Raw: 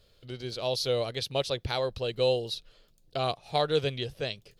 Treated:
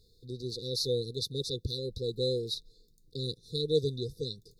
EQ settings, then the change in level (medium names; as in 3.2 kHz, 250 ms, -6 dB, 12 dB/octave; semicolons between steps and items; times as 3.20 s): brick-wall FIR band-stop 510–3500 Hz; 0.0 dB